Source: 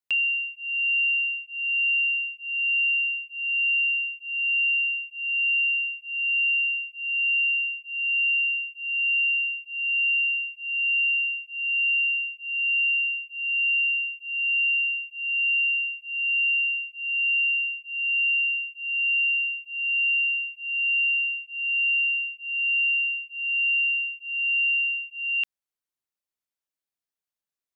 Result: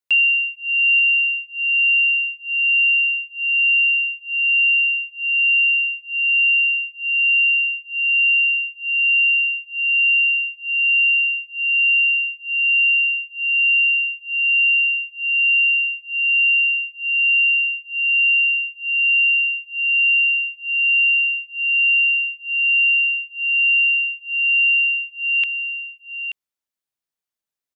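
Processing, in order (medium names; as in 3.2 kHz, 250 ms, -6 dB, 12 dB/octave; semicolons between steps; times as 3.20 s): dynamic bell 2.6 kHz, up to +7 dB, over -37 dBFS, Q 0.87; delay 881 ms -10.5 dB; trim +1.5 dB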